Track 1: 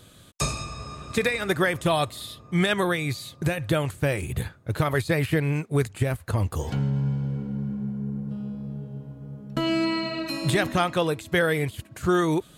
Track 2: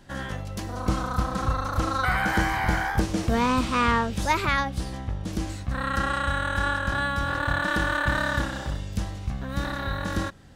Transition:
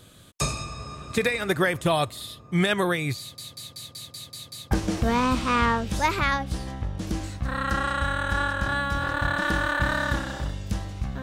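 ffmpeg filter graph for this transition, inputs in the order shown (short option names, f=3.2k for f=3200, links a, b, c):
-filter_complex "[0:a]apad=whole_dur=11.22,atrim=end=11.22,asplit=8[a][b][c][d][e][f][g][h];[a]atrim=end=3.382[i];[b]atrim=start=3.188:end=3.382[j];[c]atrim=start=3.188:end=3.382[k];[d]atrim=start=3.188:end=3.382[l];[e]atrim=start=3.188:end=3.382[m];[f]atrim=start=3.188:end=3.382[n];[g]atrim=start=3.188:end=3.382[o];[h]atrim=start=3.188:end=3.382[p];[1:a]atrim=start=2.968:end=9.48[q];[i][j]acrossfade=d=0.004:c1=hsin:c2=hsin[r];[r][k]acrossfade=d=0.004:c1=hsin:c2=hsin[s];[s][l]acrossfade=d=0.004:c1=hsin:c2=hsin[t];[t][m]acrossfade=d=0.004:c1=hsin:c2=hsin[u];[u][n]acrossfade=d=0.004:c1=hsin:c2=hsin[v];[v][o]acrossfade=d=0.004:c1=hsin:c2=hsin[w];[w][p]acrossfade=d=0.004:c1=hsin:c2=hsin[x];[x][q]acrossfade=d=0.004:c1=hsin:c2=hsin"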